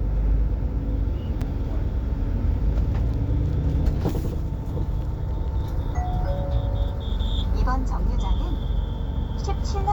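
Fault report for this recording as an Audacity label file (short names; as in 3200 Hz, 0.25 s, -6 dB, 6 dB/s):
1.410000	1.420000	gap 5.4 ms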